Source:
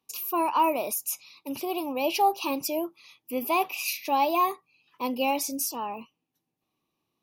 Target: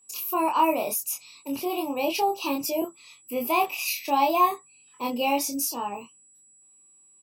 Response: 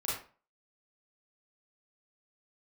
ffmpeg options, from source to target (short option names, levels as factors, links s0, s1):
-filter_complex "[0:a]asettb=1/sr,asplit=3[s0][s1][s2];[s0]atrim=end=1.024[s3];[s1]atrim=start=1.02:end=2.82,asetpts=PTS-STARTPTS,afade=t=in:d=0.004:c=qsin,afade=t=out:st=1.796:d=0.004:c=qsin,acrossover=split=450[s4][s5];[s5]acompressor=threshold=0.0501:ratio=6[s6];[s4][s6]amix=inputs=2:normalize=0[s7];[s2]atrim=start=2.816[s8];[s3][s7]acrossfade=d=0.004:c1=hsin:c2=qsin[s9];[s9][s8]acrossfade=d=0.004:c1=qsin:c2=hsin,aeval=exprs='val(0)+0.00112*sin(2*PI*7800*n/s)':c=same,asplit=2[s10][s11];[s11]adelay=25,volume=0.75[s12];[s10][s12]amix=inputs=2:normalize=0"